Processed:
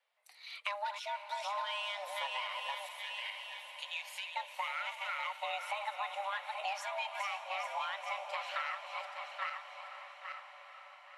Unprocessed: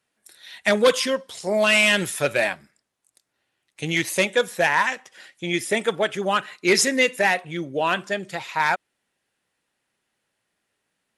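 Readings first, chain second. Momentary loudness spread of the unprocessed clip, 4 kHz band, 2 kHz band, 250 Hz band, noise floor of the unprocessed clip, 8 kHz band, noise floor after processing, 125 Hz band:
11 LU, -13.5 dB, -17.0 dB, under -40 dB, -78 dBFS, -24.5 dB, -56 dBFS, under -40 dB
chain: backward echo that repeats 413 ms, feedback 47%, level -7 dB; frequency shift +400 Hz; compression 12:1, threshold -31 dBFS, peak gain reduction 20 dB; peaking EQ 4 kHz +4 dB 1.1 oct; time-frequency box 2.86–4.36 s, 380–1500 Hz -25 dB; tone controls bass -12 dB, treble -13 dB; echo that smears into a reverb 513 ms, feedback 71%, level -11.5 dB; trim -4 dB

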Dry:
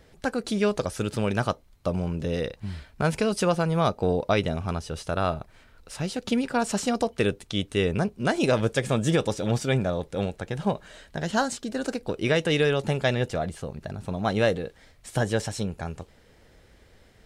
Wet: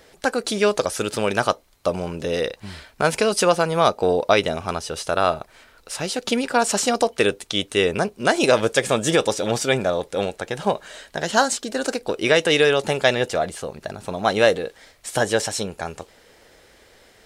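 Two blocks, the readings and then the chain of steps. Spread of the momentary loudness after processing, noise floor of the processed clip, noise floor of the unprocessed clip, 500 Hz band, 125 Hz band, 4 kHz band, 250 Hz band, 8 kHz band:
12 LU, -55 dBFS, -57 dBFS, +6.5 dB, -4.0 dB, +8.5 dB, +0.5 dB, +10.5 dB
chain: tone controls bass -13 dB, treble +3 dB; trim +7.5 dB

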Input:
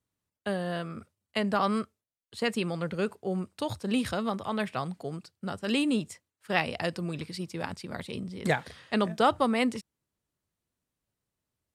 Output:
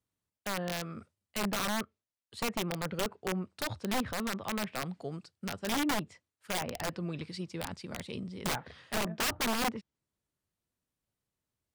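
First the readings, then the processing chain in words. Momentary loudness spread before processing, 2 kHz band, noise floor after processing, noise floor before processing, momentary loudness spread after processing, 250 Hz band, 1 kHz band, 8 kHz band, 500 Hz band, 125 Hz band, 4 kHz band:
13 LU, -3.0 dB, under -85 dBFS, under -85 dBFS, 11 LU, -6.0 dB, -5.0 dB, +7.5 dB, -7.0 dB, -4.0 dB, -0.5 dB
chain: low-pass that closes with the level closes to 1.5 kHz, closed at -24.5 dBFS; integer overflow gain 22.5 dB; trim -3 dB

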